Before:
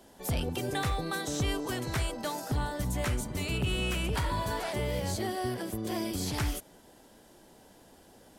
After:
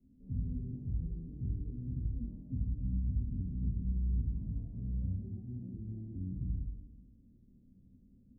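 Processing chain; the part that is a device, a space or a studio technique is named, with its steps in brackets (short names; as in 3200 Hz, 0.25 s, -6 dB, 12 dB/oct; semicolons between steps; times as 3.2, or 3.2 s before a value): club heard from the street (limiter -27.5 dBFS, peak gain reduction 6 dB; LPF 210 Hz 24 dB/oct; reverb RT60 1.1 s, pre-delay 3 ms, DRR -5.5 dB); gain -4.5 dB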